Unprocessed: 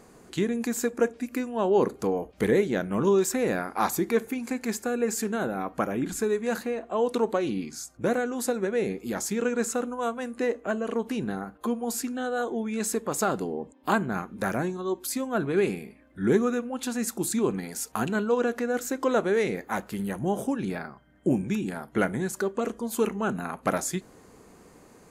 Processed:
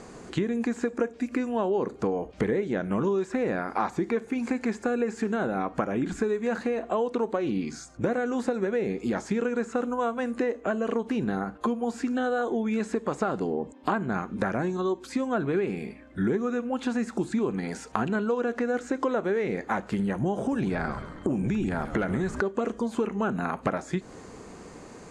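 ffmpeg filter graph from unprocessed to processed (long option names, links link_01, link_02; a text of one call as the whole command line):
ffmpeg -i in.wav -filter_complex "[0:a]asettb=1/sr,asplit=3[link_01][link_02][link_03];[link_01]atrim=end=20.384[link_04];[link_02]atrim=start=20.38:end=22.41,asetpts=PTS-STARTPTS,afade=type=in:duration=0.004:curve=qsin,afade=type=out:start_time=2.026:duration=0.004:curve=qsin,aeval=exprs='0.316*sin(PI/2*1.41*val(0)/0.316)':channel_layout=same,acompressor=threshold=-28dB:ratio=3:attack=3.2:release=140:knee=1:detection=peak,asplit=6[link_05][link_06][link_07][link_08][link_09][link_10];[link_06]adelay=135,afreqshift=-120,volume=-14.5dB[link_11];[link_07]adelay=270,afreqshift=-240,volume=-19.7dB[link_12];[link_08]adelay=405,afreqshift=-360,volume=-24.9dB[link_13];[link_09]adelay=540,afreqshift=-480,volume=-30.1dB[link_14];[link_10]adelay=675,afreqshift=-600,volume=-35.3dB[link_15];[link_05][link_11][link_12][link_13][link_14][link_15]amix=inputs=6:normalize=0,atrim=end_sample=89523[link_16];[link_03]atrim=start=22.406[link_17];[link_04][link_16]acrossfade=duration=0.004:curve1=hsin:curve2=qsin[link_18];[link_18][link_17]acrossfade=duration=0.004:curve1=qsin:curve2=hsin,acrossover=split=2600[link_19][link_20];[link_20]acompressor=threshold=-50dB:ratio=4:attack=1:release=60[link_21];[link_19][link_21]amix=inputs=2:normalize=0,lowpass=frequency=8300:width=0.5412,lowpass=frequency=8300:width=1.3066,acompressor=threshold=-32dB:ratio=6,volume=8dB" out.wav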